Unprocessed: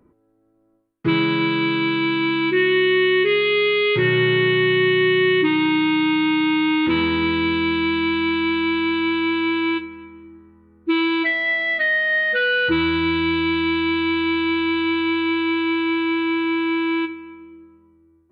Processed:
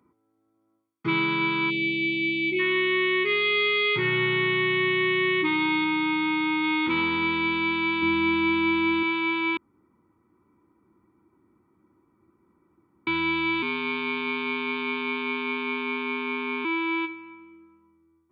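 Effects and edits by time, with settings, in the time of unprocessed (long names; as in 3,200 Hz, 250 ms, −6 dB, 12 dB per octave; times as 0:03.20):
0:01.70–0:02.59: time-frequency box erased 950–2,000 Hz
0:05.84–0:06.64: high-shelf EQ 3,900 Hz −6.5 dB
0:08.02–0:09.03: low-shelf EQ 290 Hz +11 dB
0:09.57–0:13.07: fill with room tone
0:13.62–0:16.65: ring modulation 78 Hz
whole clip: high-pass filter 87 Hz; low-shelf EQ 300 Hz −9 dB; comb filter 0.9 ms, depth 55%; level −4 dB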